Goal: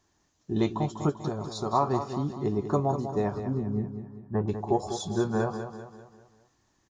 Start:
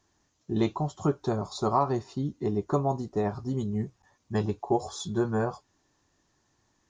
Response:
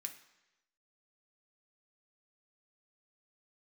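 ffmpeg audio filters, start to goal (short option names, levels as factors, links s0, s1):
-filter_complex "[0:a]asettb=1/sr,asplit=3[s0][s1][s2];[s0]atrim=end=1.094[s3];[s1]atrim=start=1.09:end=1.73,asetpts=PTS-STARTPTS,afade=t=in:d=0.004:c=qsin,afade=t=out:st=0.636:d=0.004:c=qsin,acompressor=threshold=0.0355:ratio=4[s4];[s2]atrim=start=1.726[s5];[s3][s4]acrossfade=d=0.004:c1=hsin:c2=qsin[s6];[s6][s5]acrossfade=d=0.004:c1=qsin:c2=hsin,asettb=1/sr,asplit=3[s7][s8][s9];[s7]atrim=end=3.404[s10];[s8]atrim=start=3.4:end=4.48,asetpts=PTS-STARTPTS,afade=t=in:d=0.004:c=qsin,afade=t=out:st=1.076:d=0.004:c=qsin,lowpass=f=1500:w=0.5412,lowpass=f=1500:w=1.3066[s11];[s9]atrim=start=4.476[s12];[s10][s11]acrossfade=d=0.004:c1=hsin:c2=qsin[s13];[s13][s12]acrossfade=d=0.004:c1=qsin:c2=hsin,aecho=1:1:196|392|588|784|980:0.355|0.163|0.0751|0.0345|0.0159"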